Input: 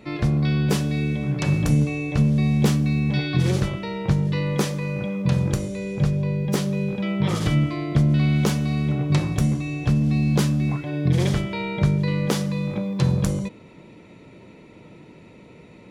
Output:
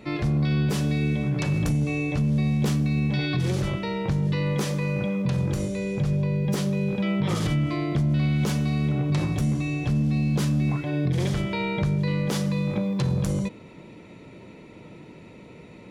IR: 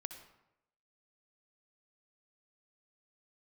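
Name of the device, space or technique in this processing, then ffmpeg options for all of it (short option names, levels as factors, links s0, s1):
soft clipper into limiter: -af "asoftclip=type=tanh:threshold=0.335,alimiter=limit=0.126:level=0:latency=1:release=70,volume=1.12"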